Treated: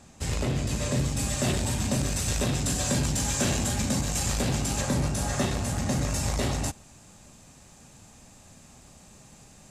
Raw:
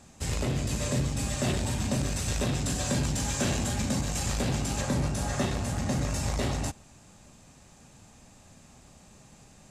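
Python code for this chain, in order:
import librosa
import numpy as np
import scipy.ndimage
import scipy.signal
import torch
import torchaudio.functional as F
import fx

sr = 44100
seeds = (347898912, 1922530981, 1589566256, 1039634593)

y = fx.high_shelf(x, sr, hz=6900.0, db=fx.steps((0.0, -2.0), (0.98, 5.5)))
y = y * librosa.db_to_amplitude(1.5)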